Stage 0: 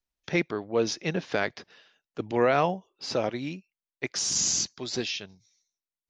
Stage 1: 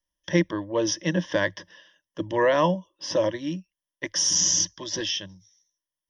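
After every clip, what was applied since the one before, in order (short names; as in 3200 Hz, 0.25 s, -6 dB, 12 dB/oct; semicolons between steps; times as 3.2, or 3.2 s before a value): ripple EQ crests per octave 1.2, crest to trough 17 dB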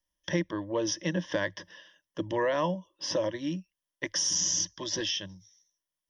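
compressor 2:1, threshold -30 dBFS, peak gain reduction 8.5 dB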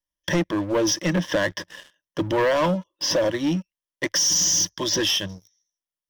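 sample leveller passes 3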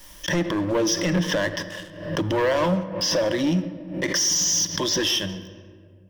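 limiter -21.5 dBFS, peak gain reduction 7 dB; on a send at -10.5 dB: reverb RT60 2.0 s, pre-delay 3 ms; on the sum: backwards sustainer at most 77 dB/s; gain +4 dB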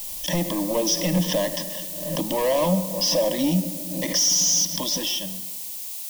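ending faded out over 1.61 s; added noise blue -36 dBFS; fixed phaser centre 390 Hz, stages 6; gain +2.5 dB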